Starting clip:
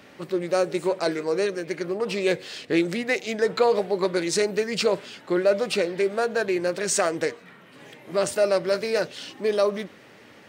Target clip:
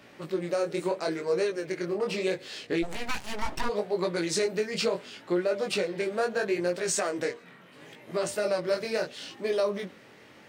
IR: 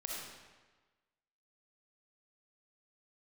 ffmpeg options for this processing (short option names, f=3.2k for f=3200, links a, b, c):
-filter_complex "[0:a]flanger=delay=17:depth=6.9:speed=0.74,alimiter=limit=-17.5dB:level=0:latency=1:release=213,asplit=3[a][b][c];[a]afade=t=out:st=2.82:d=0.02[d];[b]aeval=exprs='abs(val(0))':c=same,afade=t=in:st=2.82:d=0.02,afade=t=out:st=3.68:d=0.02[e];[c]afade=t=in:st=3.68:d=0.02[f];[d][e][f]amix=inputs=3:normalize=0"